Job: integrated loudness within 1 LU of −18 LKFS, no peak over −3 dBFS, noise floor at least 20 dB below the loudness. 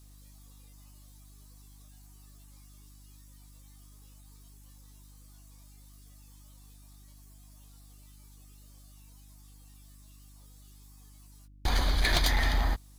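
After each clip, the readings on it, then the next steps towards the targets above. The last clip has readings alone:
share of clipped samples 0.4%; peaks flattened at −20.0 dBFS; mains hum 50 Hz; hum harmonics up to 300 Hz; level of the hum −51 dBFS; integrated loudness −28.0 LKFS; sample peak −20.0 dBFS; target loudness −18.0 LKFS
→ clipped peaks rebuilt −20 dBFS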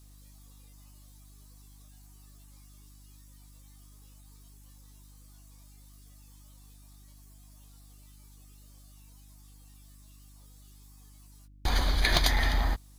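share of clipped samples 0.0%; mains hum 50 Hz; hum harmonics up to 300 Hz; level of the hum −51 dBFS
→ hum removal 50 Hz, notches 6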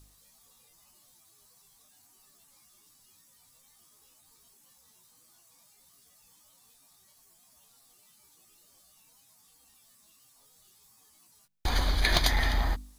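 mains hum none found; integrated loudness −27.5 LKFS; sample peak −10.0 dBFS; target loudness −18.0 LKFS
→ level +9.5 dB
brickwall limiter −3 dBFS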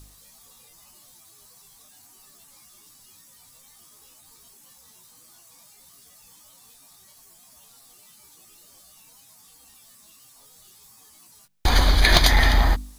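integrated loudness −18.5 LKFS; sample peak −3.0 dBFS; background noise floor −53 dBFS

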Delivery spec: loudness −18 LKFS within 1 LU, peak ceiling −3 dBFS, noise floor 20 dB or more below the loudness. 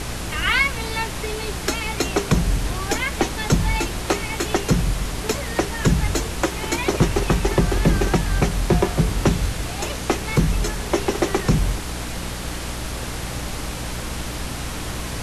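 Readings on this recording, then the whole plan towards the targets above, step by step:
mains hum 60 Hz; hum harmonics up to 300 Hz; level of the hum −31 dBFS; background noise floor −29 dBFS; target noise floor −43 dBFS; integrated loudness −23.0 LKFS; sample peak −5.5 dBFS; target loudness −18.0 LKFS
→ mains-hum notches 60/120/180/240/300 Hz
noise reduction from a noise print 14 dB
level +5 dB
brickwall limiter −3 dBFS

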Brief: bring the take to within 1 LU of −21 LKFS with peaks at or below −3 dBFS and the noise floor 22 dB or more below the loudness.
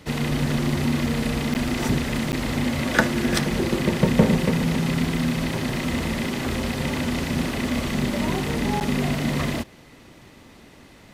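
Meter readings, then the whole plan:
number of dropouts 3; longest dropout 9.6 ms; integrated loudness −23.5 LKFS; sample peak −1.5 dBFS; target loudness −21.0 LKFS
→ repair the gap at 0:01.54/0:02.32/0:08.80, 9.6 ms
level +2.5 dB
brickwall limiter −3 dBFS

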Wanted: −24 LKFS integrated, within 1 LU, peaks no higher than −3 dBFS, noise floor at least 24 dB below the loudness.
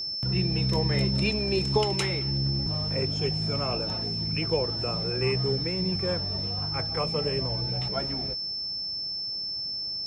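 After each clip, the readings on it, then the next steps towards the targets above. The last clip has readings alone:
interfering tone 5,300 Hz; level of the tone −30 dBFS; integrated loudness −27.0 LKFS; sample peak −12.0 dBFS; target loudness −24.0 LKFS
→ notch filter 5,300 Hz, Q 30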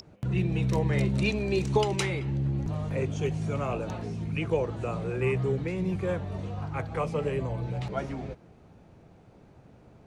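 interfering tone none found; integrated loudness −29.5 LKFS; sample peak −13.0 dBFS; target loudness −24.0 LKFS
→ level +5.5 dB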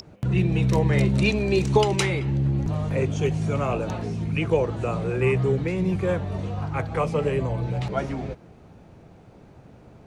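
integrated loudness −24.0 LKFS; sample peak −7.5 dBFS; background noise floor −50 dBFS

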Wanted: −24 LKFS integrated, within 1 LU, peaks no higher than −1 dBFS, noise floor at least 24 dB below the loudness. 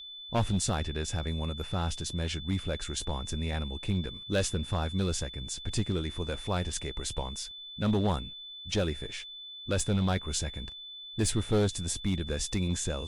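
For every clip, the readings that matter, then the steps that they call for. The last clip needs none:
share of clipped samples 0.8%; peaks flattened at −21.0 dBFS; interfering tone 3,500 Hz; level of the tone −42 dBFS; integrated loudness −32.0 LKFS; sample peak −21.0 dBFS; target loudness −24.0 LKFS
→ clipped peaks rebuilt −21 dBFS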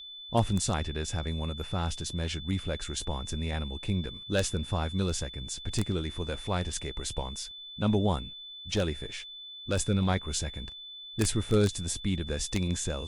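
share of clipped samples 0.0%; interfering tone 3,500 Hz; level of the tone −42 dBFS
→ notch filter 3,500 Hz, Q 30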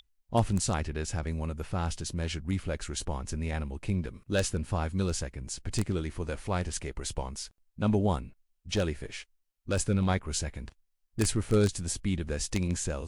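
interfering tone none found; integrated loudness −31.5 LKFS; sample peak −12.0 dBFS; target loudness −24.0 LKFS
→ level +7.5 dB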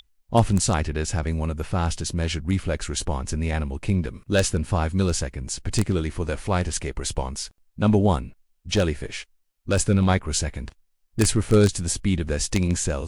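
integrated loudness −24.0 LKFS; sample peak −4.5 dBFS; background noise floor −68 dBFS

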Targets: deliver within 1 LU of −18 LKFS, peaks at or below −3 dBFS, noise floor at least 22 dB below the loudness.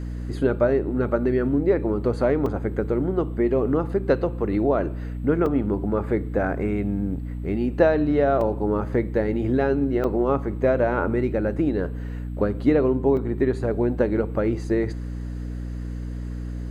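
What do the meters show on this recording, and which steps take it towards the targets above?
number of dropouts 5; longest dropout 2.9 ms; mains hum 60 Hz; hum harmonics up to 300 Hz; level of the hum −28 dBFS; integrated loudness −23.5 LKFS; sample peak −5.5 dBFS; target loudness −18.0 LKFS
→ repair the gap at 0:02.46/0:05.46/0:08.41/0:10.04/0:13.17, 2.9 ms
hum removal 60 Hz, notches 5
level +5.5 dB
brickwall limiter −3 dBFS

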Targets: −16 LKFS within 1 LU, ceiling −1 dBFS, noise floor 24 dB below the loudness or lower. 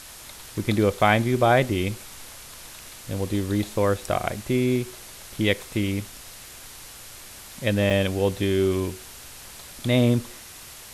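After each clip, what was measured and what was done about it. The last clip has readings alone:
number of dropouts 1; longest dropout 5.7 ms; background noise floor −43 dBFS; target noise floor −48 dBFS; integrated loudness −24.0 LKFS; sample peak −6.0 dBFS; target loudness −16.0 LKFS
→ repair the gap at 0:07.90, 5.7 ms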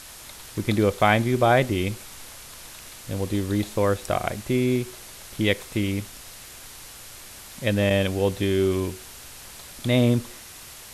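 number of dropouts 0; background noise floor −43 dBFS; target noise floor −48 dBFS
→ noise reduction from a noise print 6 dB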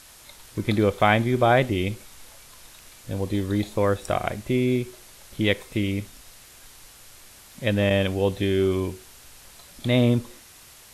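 background noise floor −49 dBFS; integrated loudness −24.0 LKFS; sample peak −6.0 dBFS; target loudness −16.0 LKFS
→ level +8 dB
brickwall limiter −1 dBFS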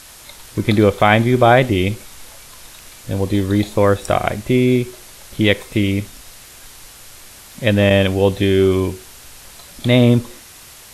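integrated loudness −16.0 LKFS; sample peak −1.0 dBFS; background noise floor −41 dBFS

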